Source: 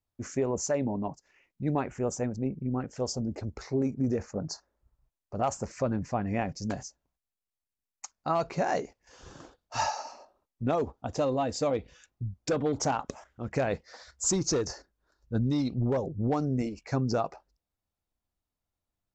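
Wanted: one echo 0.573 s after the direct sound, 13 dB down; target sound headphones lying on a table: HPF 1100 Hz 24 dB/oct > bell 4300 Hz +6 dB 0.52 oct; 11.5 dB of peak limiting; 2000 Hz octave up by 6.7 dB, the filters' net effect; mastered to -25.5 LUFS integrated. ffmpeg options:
-af "equalizer=f=2k:t=o:g=8.5,alimiter=level_in=1.5dB:limit=-24dB:level=0:latency=1,volume=-1.5dB,highpass=f=1.1k:w=0.5412,highpass=f=1.1k:w=1.3066,equalizer=f=4.3k:t=o:w=0.52:g=6,aecho=1:1:573:0.224,volume=16dB"

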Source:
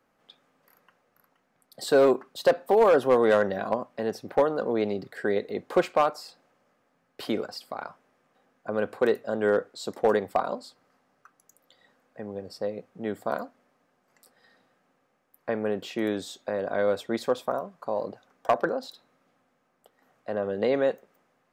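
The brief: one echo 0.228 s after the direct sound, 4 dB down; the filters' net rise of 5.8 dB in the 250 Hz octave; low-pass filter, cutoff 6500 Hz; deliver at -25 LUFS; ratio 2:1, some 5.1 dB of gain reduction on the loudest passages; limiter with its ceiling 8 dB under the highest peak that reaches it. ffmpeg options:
-af "lowpass=6.5k,equalizer=f=250:t=o:g=7.5,acompressor=threshold=-23dB:ratio=2,alimiter=limit=-19.5dB:level=0:latency=1,aecho=1:1:228:0.631,volume=5.5dB"

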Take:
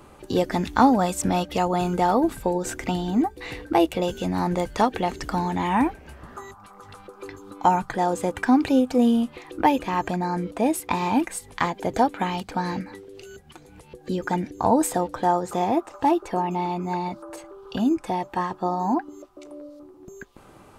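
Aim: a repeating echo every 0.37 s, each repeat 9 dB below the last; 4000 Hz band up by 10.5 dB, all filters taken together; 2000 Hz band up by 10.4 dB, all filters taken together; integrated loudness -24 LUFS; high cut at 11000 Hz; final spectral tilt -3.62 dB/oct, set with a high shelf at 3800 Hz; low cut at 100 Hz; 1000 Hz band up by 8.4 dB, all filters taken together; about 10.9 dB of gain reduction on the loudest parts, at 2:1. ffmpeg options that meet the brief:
-af "highpass=100,lowpass=11k,equalizer=f=1k:t=o:g=8.5,equalizer=f=2k:t=o:g=7,highshelf=f=3.8k:g=9,equalizer=f=4k:t=o:g=5,acompressor=threshold=-26dB:ratio=2,aecho=1:1:370|740|1110|1480:0.355|0.124|0.0435|0.0152,volume=1.5dB"

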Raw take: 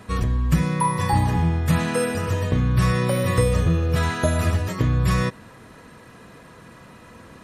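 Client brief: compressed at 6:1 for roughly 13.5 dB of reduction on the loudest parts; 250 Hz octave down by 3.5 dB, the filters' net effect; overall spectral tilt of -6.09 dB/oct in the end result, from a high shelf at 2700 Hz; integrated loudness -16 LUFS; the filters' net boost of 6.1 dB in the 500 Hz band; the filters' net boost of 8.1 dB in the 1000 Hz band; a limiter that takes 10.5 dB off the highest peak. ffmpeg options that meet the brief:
-af "equalizer=f=250:t=o:g=-8,equalizer=f=500:t=o:g=6.5,equalizer=f=1k:t=o:g=8.5,highshelf=f=2.7k:g=-4.5,acompressor=threshold=-25dB:ratio=6,volume=17.5dB,alimiter=limit=-6.5dB:level=0:latency=1"

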